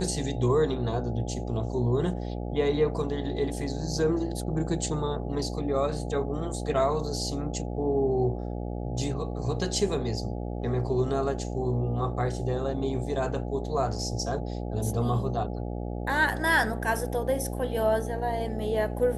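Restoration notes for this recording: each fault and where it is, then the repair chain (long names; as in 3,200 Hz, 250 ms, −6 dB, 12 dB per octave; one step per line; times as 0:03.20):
mains buzz 60 Hz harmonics 14 −33 dBFS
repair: hum removal 60 Hz, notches 14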